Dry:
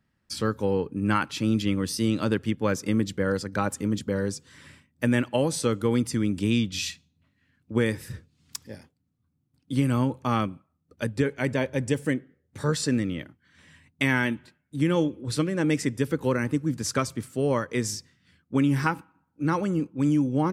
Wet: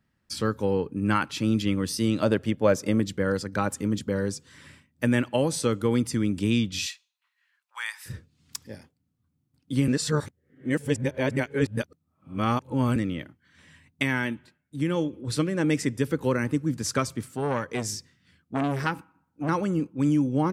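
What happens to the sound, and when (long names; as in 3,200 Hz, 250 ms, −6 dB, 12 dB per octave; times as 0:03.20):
0:02.22–0:03.00: parametric band 620 Hz +11 dB 0.51 octaves
0:06.86–0:08.06: Butterworth high-pass 850 Hz 48 dB per octave
0:09.88–0:12.96: reverse
0:14.03–0:15.13: clip gain −3 dB
0:17.35–0:19.49: saturating transformer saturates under 1,200 Hz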